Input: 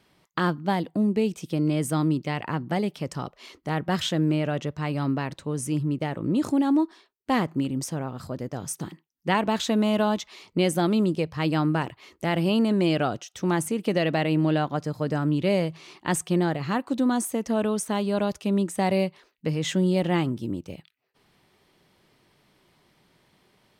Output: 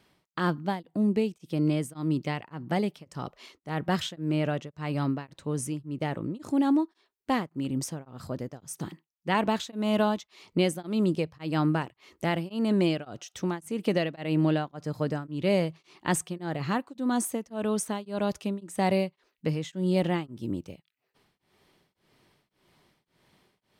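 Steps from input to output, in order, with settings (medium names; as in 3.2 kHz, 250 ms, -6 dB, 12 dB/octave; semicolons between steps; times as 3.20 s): tremolo of two beating tones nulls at 1.8 Hz; trim -1 dB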